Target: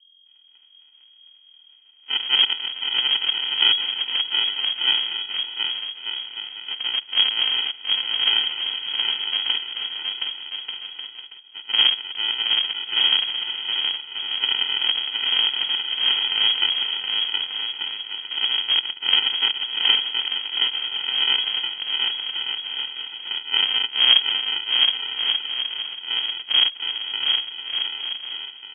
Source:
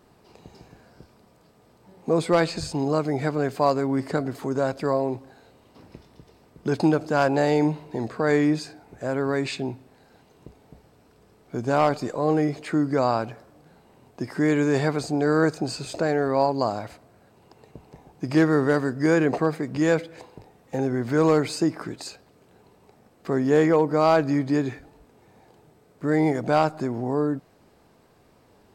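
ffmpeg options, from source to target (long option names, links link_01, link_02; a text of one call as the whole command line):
ffmpeg -i in.wav -af "highpass=1300,aemphasis=mode=production:type=cd,agate=range=-33dB:threshold=-56dB:ratio=3:detection=peak,highshelf=frequency=2400:gain=-10.5,dynaudnorm=framelen=150:gausssize=13:maxgain=14dB,aresample=16000,acrusher=samples=23:mix=1:aa=0.000001,aresample=44100,aeval=exprs='val(0)+0.002*(sin(2*PI*50*n/s)+sin(2*PI*2*50*n/s)/2+sin(2*PI*3*50*n/s)/3+sin(2*PI*4*50*n/s)/4+sin(2*PI*5*50*n/s)/5)':channel_layout=same,asetrate=34006,aresample=44100,atempo=1.29684,aecho=1:1:720|1188|1492|1690|1818:0.631|0.398|0.251|0.158|0.1,lowpass=frequency=2800:width_type=q:width=0.5098,lowpass=frequency=2800:width_type=q:width=0.6013,lowpass=frequency=2800:width_type=q:width=0.9,lowpass=frequency=2800:width_type=q:width=2.563,afreqshift=-3300" out.wav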